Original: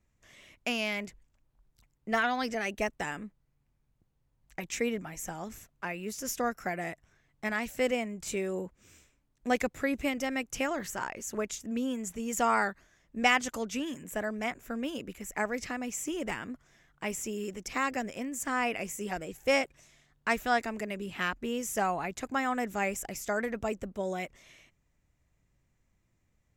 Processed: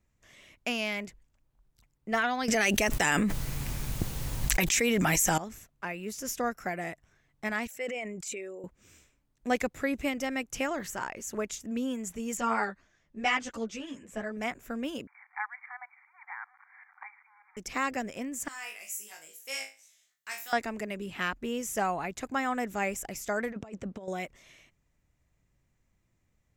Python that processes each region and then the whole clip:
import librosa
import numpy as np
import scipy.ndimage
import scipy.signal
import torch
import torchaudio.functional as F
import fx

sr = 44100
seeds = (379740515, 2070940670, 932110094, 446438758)

y = fx.chain(x, sr, fx.high_shelf(hz=2400.0, db=10.0),
    fx.env_flatten(amount_pct=100), at=(2.48, 5.38))
y = fx.chain(y, sr, fx.envelope_sharpen(power=1.5),
    fx.highpass(hz=1200.0, slope=6),
    fx.sustainer(db_per_s=24.0), at=(7.67, 8.64))
y = fx.chain(y, sr, fx.lowpass(hz=6700.0, slope=12),
    fx.ensemble(), at=(12.37, 14.37))
y = fx.chain(y, sr, fx.zero_step(step_db=-44.0),
    fx.brickwall_bandpass(low_hz=730.0, high_hz=2400.0),
    fx.tremolo_shape(shape='saw_up', hz=5.1, depth_pct=75), at=(15.07, 17.57))
y = fx.chain(y, sr, fx.highpass(hz=56.0, slope=12),
    fx.differentiator(),
    fx.room_flutter(wall_m=3.2, rt60_s=0.32), at=(18.48, 20.53))
y = fx.chain(y, sr, fx.highpass(hz=71.0, slope=12),
    fx.air_absorb(metres=66.0),
    fx.over_compress(threshold_db=-38.0, ratio=-0.5), at=(23.52, 24.08))